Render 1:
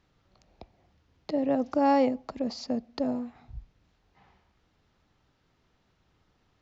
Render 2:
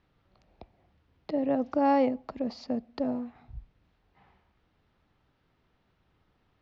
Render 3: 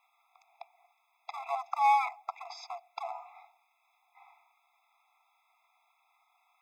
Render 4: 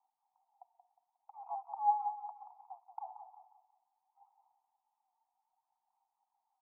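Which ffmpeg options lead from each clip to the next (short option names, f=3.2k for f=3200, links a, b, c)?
-af "lowpass=3.7k,volume=-1dB"
-filter_complex "[0:a]acrossover=split=1500[a][b];[a]asoftclip=type=hard:threshold=-24dB[c];[b]aexciter=amount=1.4:drive=2.1:freq=2.3k[d];[c][d]amix=inputs=2:normalize=0,afftfilt=real='re*eq(mod(floor(b*sr/1024/670),2),1)':imag='im*eq(mod(floor(b*sr/1024/670),2),1)':win_size=1024:overlap=0.75,volume=6.5dB"
-filter_complex "[0:a]aphaser=in_gain=1:out_gain=1:delay=4.4:decay=0.52:speed=0.67:type=sinusoidal,asuperpass=centerf=840:order=4:qfactor=4.7,asplit=2[a][b];[b]aecho=0:1:180|360|540|720:0.335|0.124|0.0459|0.017[c];[a][c]amix=inputs=2:normalize=0,volume=-7.5dB"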